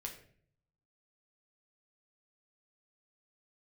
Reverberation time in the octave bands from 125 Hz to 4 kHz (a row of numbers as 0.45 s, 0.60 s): 1.0 s, 0.80 s, 0.65 s, 0.45 s, 0.50 s, 0.40 s